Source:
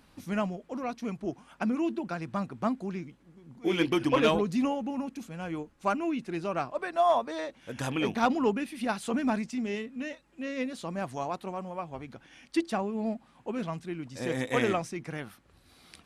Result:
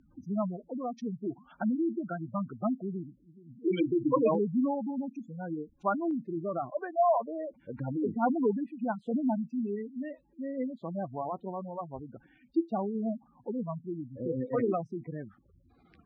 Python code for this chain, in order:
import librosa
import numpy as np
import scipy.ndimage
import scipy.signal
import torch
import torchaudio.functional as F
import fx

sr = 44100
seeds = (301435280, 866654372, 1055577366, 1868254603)

y = fx.spec_gate(x, sr, threshold_db=-10, keep='strong')
y = fx.lowpass(y, sr, hz=fx.steps((0.0, 8500.0), (4.35, 5000.0), (6.11, 1300.0)), slope=12)